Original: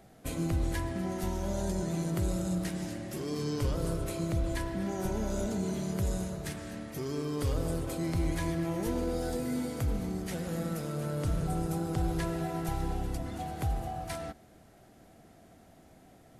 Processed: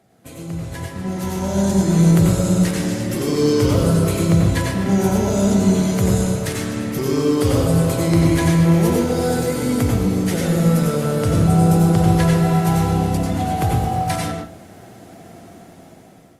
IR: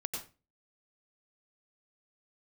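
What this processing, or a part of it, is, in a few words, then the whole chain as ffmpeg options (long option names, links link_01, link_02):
far-field microphone of a smart speaker: -filter_complex "[1:a]atrim=start_sample=2205[link_01];[0:a][link_01]afir=irnorm=-1:irlink=0,highpass=frequency=80:width=0.5412,highpass=frequency=80:width=1.3066,dynaudnorm=framelen=510:gausssize=5:maxgain=15dB" -ar 48000 -c:a libopus -b:a 48k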